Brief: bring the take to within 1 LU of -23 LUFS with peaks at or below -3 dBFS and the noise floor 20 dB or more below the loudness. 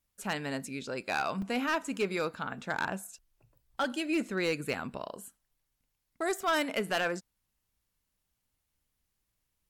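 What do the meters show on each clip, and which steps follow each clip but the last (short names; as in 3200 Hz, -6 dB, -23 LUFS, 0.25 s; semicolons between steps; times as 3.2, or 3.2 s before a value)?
clipped 0.6%; flat tops at -23.0 dBFS; dropouts 2; longest dropout 3.5 ms; loudness -33.0 LUFS; peak -23.0 dBFS; loudness target -23.0 LUFS
-> clip repair -23 dBFS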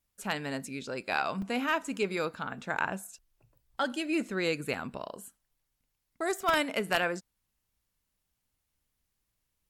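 clipped 0.0%; dropouts 2; longest dropout 3.5 ms
-> interpolate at 1.42/4.74, 3.5 ms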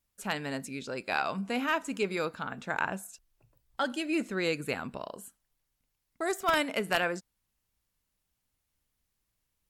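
dropouts 0; loudness -32.0 LUFS; peak -14.0 dBFS; loudness target -23.0 LUFS
-> gain +9 dB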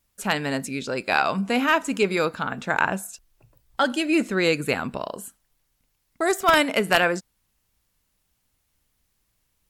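loudness -23.0 LUFS; peak -5.0 dBFS; noise floor -73 dBFS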